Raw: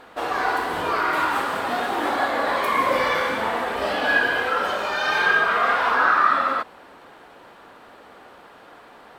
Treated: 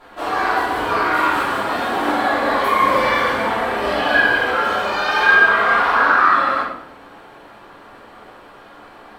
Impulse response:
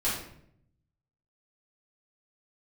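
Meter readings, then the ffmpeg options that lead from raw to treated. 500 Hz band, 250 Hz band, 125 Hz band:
+4.0 dB, +6.0 dB, +6.0 dB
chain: -filter_complex "[1:a]atrim=start_sample=2205[a];[0:a][a]afir=irnorm=-1:irlink=0,volume=-4.5dB"

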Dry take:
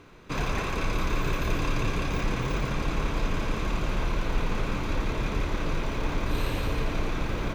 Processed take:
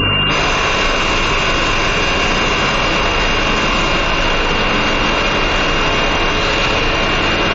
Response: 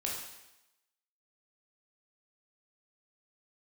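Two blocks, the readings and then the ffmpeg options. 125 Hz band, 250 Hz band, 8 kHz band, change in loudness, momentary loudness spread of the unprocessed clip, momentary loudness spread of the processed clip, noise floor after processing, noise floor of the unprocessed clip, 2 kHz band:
+7.5 dB, +11.5 dB, +17.5 dB, +16.5 dB, 2 LU, 1 LU, -16 dBFS, -31 dBFS, +20.5 dB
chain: -filter_complex "[0:a]aresample=16000,asoftclip=type=hard:threshold=-22dB,aresample=44100,aeval=exprs='val(0)+0.0141*(sin(2*PI*50*n/s)+sin(2*PI*2*50*n/s)/2+sin(2*PI*3*50*n/s)/3+sin(2*PI*4*50*n/s)/4+sin(2*PI*5*50*n/s)/5)':c=same,aemphasis=mode=production:type=50kf,asplit=2[a][b];[b]highpass=f=720:p=1,volume=25dB,asoftclip=type=tanh:threshold=-18dB[c];[a][c]amix=inputs=2:normalize=0,lowpass=f=2.4k:p=1,volume=-6dB,aeval=exprs='val(0)+0.02*sin(2*PI*2800*n/s)':c=same[d];[1:a]atrim=start_sample=2205[e];[d][e]afir=irnorm=-1:irlink=0,afftfilt=real='re*gte(hypot(re,im),0.02)':imag='im*gte(hypot(re,im),0.02)':win_size=1024:overlap=0.75,highshelf=f=5.4k:g=3.5,aecho=1:1:194|388|582:0.316|0.0664|0.0139,acompressor=threshold=-35dB:ratio=6,alimiter=level_in=35.5dB:limit=-1dB:release=50:level=0:latency=1,volume=-5.5dB"

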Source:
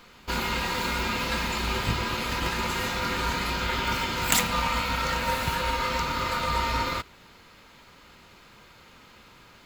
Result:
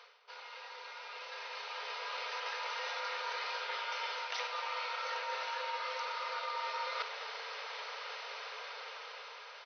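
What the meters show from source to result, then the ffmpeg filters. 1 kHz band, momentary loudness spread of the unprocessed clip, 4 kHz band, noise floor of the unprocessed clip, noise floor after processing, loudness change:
-10.5 dB, 4 LU, -10.5 dB, -53 dBFS, -51 dBFS, -12.5 dB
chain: -filter_complex "[0:a]afftfilt=real='re*between(b*sr/4096,410,6200)':imag='im*between(b*sr/4096,410,6200)':win_size=4096:overlap=0.75,areverse,acompressor=threshold=-48dB:ratio=8,areverse,asplit=2[a][b];[b]adelay=211,lowpass=f=2k:p=1,volume=-10dB,asplit=2[c][d];[d]adelay=211,lowpass=f=2k:p=1,volume=0.4,asplit=2[e][f];[f]adelay=211,lowpass=f=2k:p=1,volume=0.4,asplit=2[g][h];[h]adelay=211,lowpass=f=2k:p=1,volume=0.4[i];[a][c][e][g][i]amix=inputs=5:normalize=0,dynaudnorm=f=280:g=13:m=10.5dB"

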